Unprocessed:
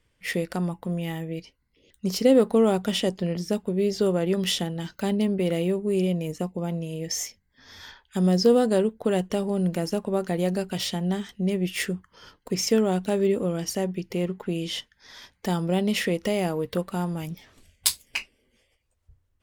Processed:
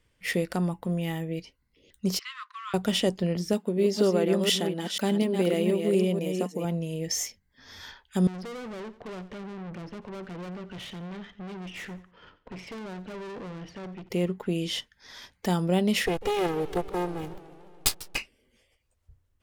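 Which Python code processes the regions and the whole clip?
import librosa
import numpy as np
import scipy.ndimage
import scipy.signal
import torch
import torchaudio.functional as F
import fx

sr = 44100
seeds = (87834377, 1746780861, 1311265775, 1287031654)

y = fx.chain(x, sr, fx.law_mismatch(coded='A'),
    fx.brickwall_bandpass(low_hz=1000.0, high_hz=10000.0),
    fx.air_absorb(metres=200.0), at=(2.19, 2.74))
y = fx.chain(y, sr, fx.reverse_delay(ms=242, wet_db=-5.5),
    fx.brickwall_highpass(low_hz=170.0), at=(3.53, 6.65))
y = fx.chain(y, sr, fx.lowpass(hz=3100.0, slope=24),
    fx.tube_stage(drive_db=37.0, bias=0.55),
    fx.echo_feedback(ms=88, feedback_pct=29, wet_db=-16), at=(8.27, 14.09))
y = fx.chain(y, sr, fx.lower_of_two(delay_ms=2.4),
    fx.backlash(play_db=-32.5),
    fx.echo_warbled(ms=145, feedback_pct=71, rate_hz=2.8, cents=197, wet_db=-17.5), at=(16.06, 18.18))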